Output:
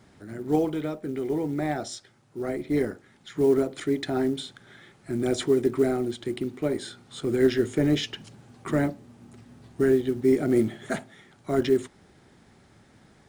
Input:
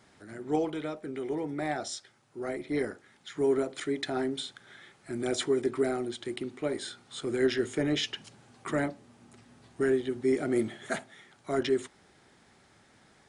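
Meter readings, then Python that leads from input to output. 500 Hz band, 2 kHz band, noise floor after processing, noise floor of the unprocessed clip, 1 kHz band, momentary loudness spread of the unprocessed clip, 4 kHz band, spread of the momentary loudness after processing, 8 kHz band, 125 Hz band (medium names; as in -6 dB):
+5.0 dB, +0.5 dB, -58 dBFS, -62 dBFS, +2.0 dB, 14 LU, 0.0 dB, 16 LU, +0.5 dB, +9.0 dB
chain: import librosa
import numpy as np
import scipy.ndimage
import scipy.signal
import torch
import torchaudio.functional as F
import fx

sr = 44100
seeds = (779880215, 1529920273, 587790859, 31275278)

y = fx.low_shelf(x, sr, hz=400.0, db=10.0)
y = fx.quant_float(y, sr, bits=4)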